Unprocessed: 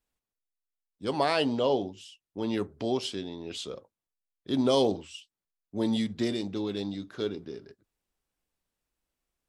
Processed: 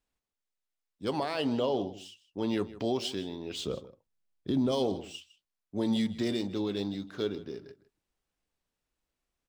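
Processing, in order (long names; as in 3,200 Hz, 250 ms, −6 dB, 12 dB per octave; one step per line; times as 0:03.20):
running median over 3 samples
0:03.59–0:04.72: low-shelf EQ 350 Hz +11 dB
brickwall limiter −20.5 dBFS, peak gain reduction 11 dB
slap from a distant wall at 27 metres, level −17 dB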